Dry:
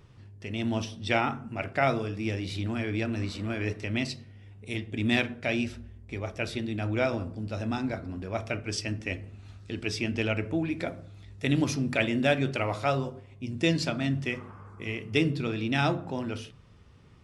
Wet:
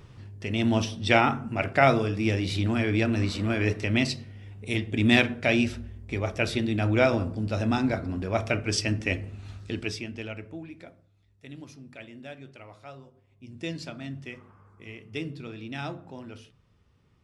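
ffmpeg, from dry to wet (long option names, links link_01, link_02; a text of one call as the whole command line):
ffmpeg -i in.wav -af "volume=14.5dB,afade=type=out:start_time=9.59:duration=0.46:silence=0.237137,afade=type=out:start_time=10.05:duration=1.03:silence=0.281838,afade=type=in:start_time=13.13:duration=0.44:silence=0.354813" out.wav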